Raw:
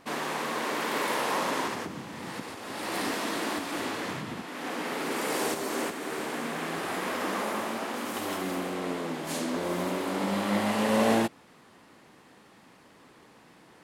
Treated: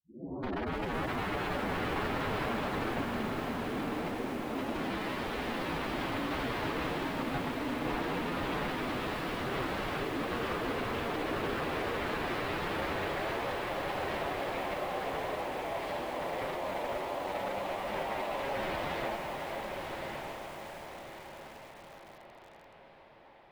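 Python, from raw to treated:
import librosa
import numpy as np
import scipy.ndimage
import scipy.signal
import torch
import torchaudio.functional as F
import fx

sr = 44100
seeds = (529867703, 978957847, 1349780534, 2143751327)

y = fx.tape_start_head(x, sr, length_s=2.5)
y = scipy.signal.sosfilt(scipy.signal.butter(2, 48.0, 'highpass', fs=sr, output='sos'), y)
y = fx.env_lowpass(y, sr, base_hz=2600.0, full_db=-26.0)
y = fx.peak_eq(y, sr, hz=1400.0, db=-10.0, octaves=0.92)
y = fx.rider(y, sr, range_db=4, speed_s=2.0)
y = fx.filter_sweep_highpass(y, sr, from_hz=250.0, to_hz=700.0, start_s=5.19, end_s=8.59, q=1.7)
y = (np.mod(10.0 ** (26.5 / 20.0) * y + 1.0, 2.0) - 1.0) / 10.0 ** (26.5 / 20.0)
y = fx.stretch_vocoder(y, sr, factor=1.7)
y = fx.air_absorb(y, sr, metres=410.0)
y = fx.echo_diffused(y, sr, ms=1189, feedback_pct=46, wet_db=-4.0)
y = fx.echo_crushed(y, sr, ms=508, feedback_pct=35, bits=8, wet_db=-5.5)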